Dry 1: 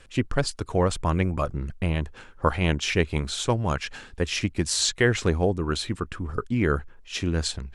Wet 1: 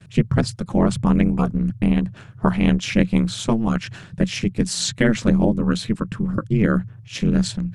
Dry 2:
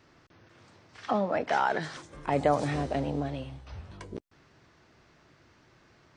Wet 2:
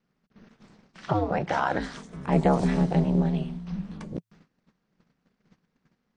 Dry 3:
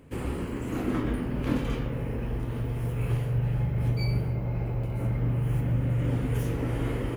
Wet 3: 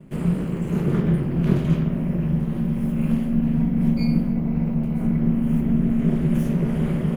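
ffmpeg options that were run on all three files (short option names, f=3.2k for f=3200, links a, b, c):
-af "aeval=exprs='val(0)*sin(2*PI*110*n/s)':c=same,equalizer=f=170:w=1.6:g=14.5,agate=range=-19dB:threshold=-55dB:ratio=16:detection=peak,volume=3dB"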